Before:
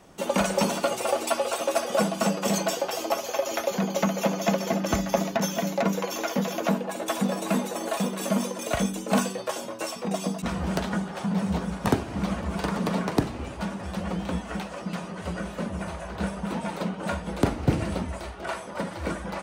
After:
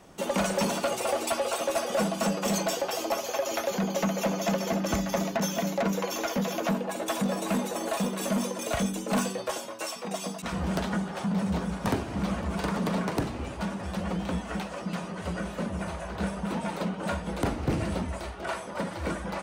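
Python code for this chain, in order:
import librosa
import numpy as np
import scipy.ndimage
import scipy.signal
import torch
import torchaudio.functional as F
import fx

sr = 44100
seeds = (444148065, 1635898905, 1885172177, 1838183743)

y = fx.low_shelf(x, sr, hz=460.0, db=-9.0, at=(9.58, 10.53))
y = 10.0 ** (-20.0 / 20.0) * np.tanh(y / 10.0 ** (-20.0 / 20.0))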